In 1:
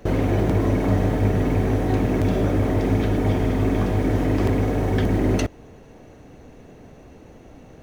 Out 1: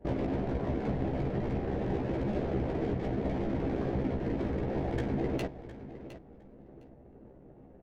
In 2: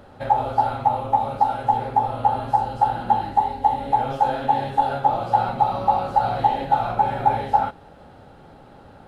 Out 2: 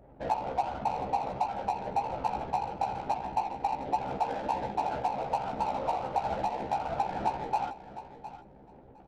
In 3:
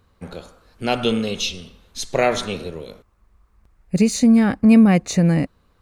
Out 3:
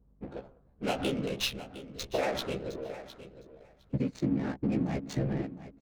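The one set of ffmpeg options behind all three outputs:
ffmpeg -i in.wav -filter_complex "[0:a]afftfilt=real='hypot(re,im)*cos(2*PI*random(0))':imag='hypot(re,im)*sin(2*PI*random(1))':win_size=512:overlap=0.75,equalizer=frequency=1200:width_type=o:width=0.52:gain=-5.5,acompressor=threshold=-27dB:ratio=4,lowshelf=frequency=210:gain=-5.5,aeval=exprs='val(0)+0.000562*(sin(2*PI*50*n/s)+sin(2*PI*2*50*n/s)/2+sin(2*PI*3*50*n/s)/3+sin(2*PI*4*50*n/s)/4+sin(2*PI*5*50*n/s)/5)':channel_layout=same,adynamicsmooth=sensitivity=8:basefreq=510,asplit=2[link_01][link_02];[link_02]adelay=15,volume=-4dB[link_03];[link_01][link_03]amix=inputs=2:normalize=0,aecho=1:1:710|1420:0.2|0.0299" out.wav

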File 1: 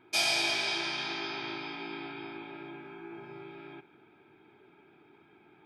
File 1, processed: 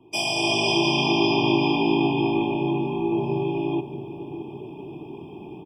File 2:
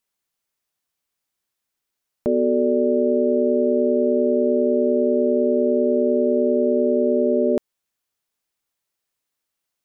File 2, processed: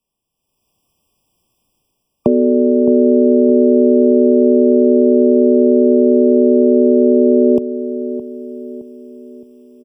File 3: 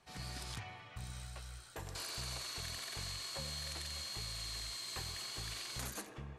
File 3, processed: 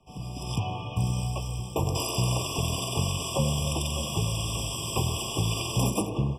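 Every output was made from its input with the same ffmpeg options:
ffmpeg -i in.wav -filter_complex "[0:a]dynaudnorm=framelen=350:gausssize=3:maxgain=14dB,lowshelf=frequency=450:gain=10,acrossover=split=97|360[link_01][link_02][link_03];[link_01]acompressor=threshold=-49dB:ratio=4[link_04];[link_02]acompressor=threshold=-17dB:ratio=4[link_05];[link_03]acompressor=threshold=-20dB:ratio=4[link_06];[link_04][link_05][link_06]amix=inputs=3:normalize=0,asplit=2[link_07][link_08];[link_08]adelay=616,lowpass=frequency=880:poles=1,volume=-11.5dB,asplit=2[link_09][link_10];[link_10]adelay=616,lowpass=frequency=880:poles=1,volume=0.48,asplit=2[link_11][link_12];[link_12]adelay=616,lowpass=frequency=880:poles=1,volume=0.48,asplit=2[link_13][link_14];[link_14]adelay=616,lowpass=frequency=880:poles=1,volume=0.48,asplit=2[link_15][link_16];[link_16]adelay=616,lowpass=frequency=880:poles=1,volume=0.48[link_17];[link_09][link_11][link_13][link_15][link_17]amix=inputs=5:normalize=0[link_18];[link_07][link_18]amix=inputs=2:normalize=0,afftfilt=real='re*eq(mod(floor(b*sr/1024/1200),2),0)':imag='im*eq(mod(floor(b*sr/1024/1200),2),0)':win_size=1024:overlap=0.75,volume=2dB" out.wav

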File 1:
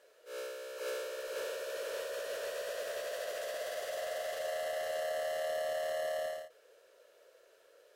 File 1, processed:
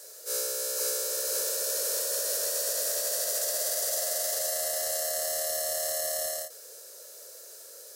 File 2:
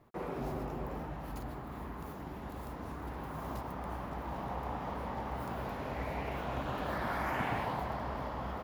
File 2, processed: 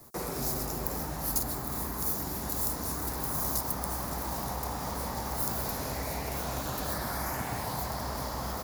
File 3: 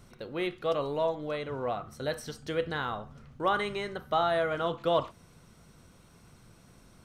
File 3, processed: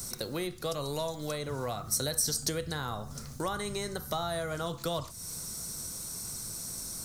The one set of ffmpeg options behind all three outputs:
ffmpeg -i in.wav -filter_complex "[0:a]acrossover=split=150|1300[link_01][link_02][link_03];[link_01]acompressor=threshold=-45dB:ratio=4[link_04];[link_02]acompressor=threshold=-44dB:ratio=4[link_05];[link_03]acompressor=threshold=-52dB:ratio=4[link_06];[link_04][link_05][link_06]amix=inputs=3:normalize=0,aexciter=amount=11.9:drive=3.1:freq=4400,volume=7.5dB" out.wav

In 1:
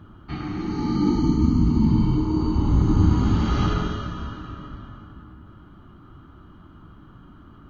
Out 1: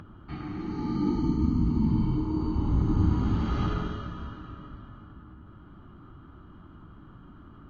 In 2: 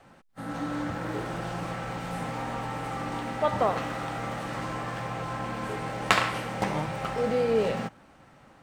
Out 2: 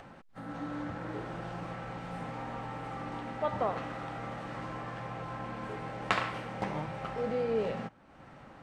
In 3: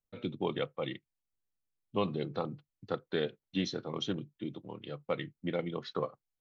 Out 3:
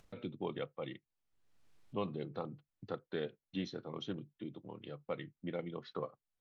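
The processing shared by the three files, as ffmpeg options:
ffmpeg -i in.wav -af "aemphasis=mode=reproduction:type=50fm,acompressor=mode=upward:threshold=-35dB:ratio=2.5,volume=-6.5dB" out.wav

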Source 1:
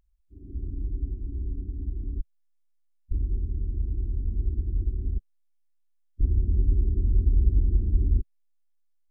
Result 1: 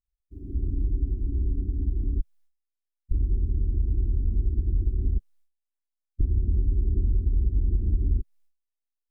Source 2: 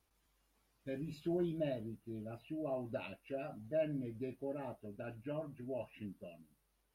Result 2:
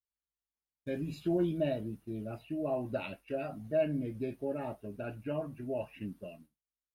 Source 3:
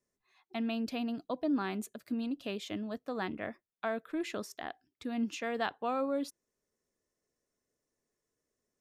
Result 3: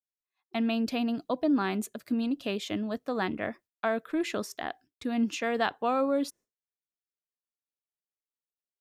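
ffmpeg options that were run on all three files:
ffmpeg -i in.wav -filter_complex "[0:a]asplit=2[link_01][link_02];[link_02]alimiter=limit=-16.5dB:level=0:latency=1:release=242,volume=0dB[link_03];[link_01][link_03]amix=inputs=2:normalize=0,agate=range=-33dB:threshold=-48dB:ratio=3:detection=peak,acompressor=threshold=-19dB:ratio=6" out.wav

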